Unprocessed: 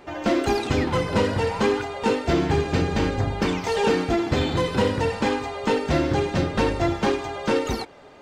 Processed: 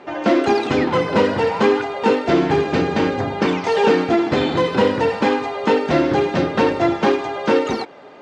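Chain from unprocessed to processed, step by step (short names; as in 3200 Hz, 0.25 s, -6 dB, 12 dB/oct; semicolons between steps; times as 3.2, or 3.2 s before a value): BPF 190–6600 Hz; high shelf 4000 Hz -7.5 dB; gain +6.5 dB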